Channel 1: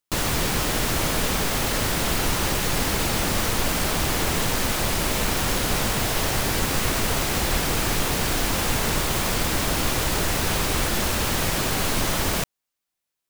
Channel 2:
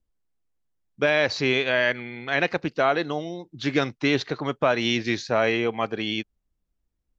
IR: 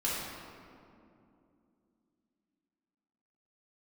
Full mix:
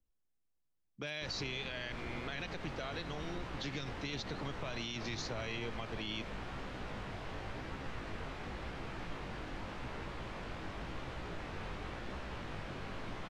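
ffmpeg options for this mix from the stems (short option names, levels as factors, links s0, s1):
-filter_complex "[0:a]flanger=delay=15:depth=7.3:speed=0.9,lowpass=2600,adelay=1100,volume=0.168[s0];[1:a]acrossover=split=140|3000[s1][s2][s3];[s2]acompressor=threshold=0.0178:ratio=6[s4];[s1][s4][s3]amix=inputs=3:normalize=0,volume=0.531[s5];[s0][s5]amix=inputs=2:normalize=0,alimiter=level_in=2:limit=0.0631:level=0:latency=1:release=60,volume=0.501"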